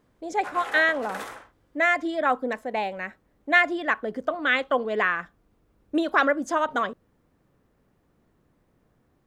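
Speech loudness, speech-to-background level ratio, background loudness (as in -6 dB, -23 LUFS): -24.5 LUFS, 13.5 dB, -38.0 LUFS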